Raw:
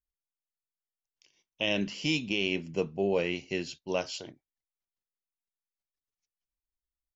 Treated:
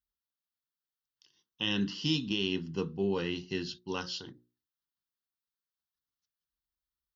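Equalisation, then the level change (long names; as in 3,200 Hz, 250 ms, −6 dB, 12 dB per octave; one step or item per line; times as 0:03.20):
high-pass filter 46 Hz
mains-hum notches 60/120/180/240/300/360/420/480/540 Hz
phaser with its sweep stopped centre 2,300 Hz, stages 6
+3.0 dB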